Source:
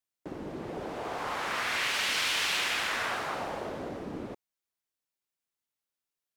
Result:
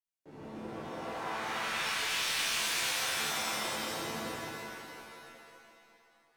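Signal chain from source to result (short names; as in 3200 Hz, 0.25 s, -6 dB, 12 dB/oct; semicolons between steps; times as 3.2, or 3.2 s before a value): resonator bank D2 minor, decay 0.42 s; wavefolder -37.5 dBFS; shimmer reverb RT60 2.5 s, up +7 st, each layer -2 dB, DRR -9 dB; gain -1.5 dB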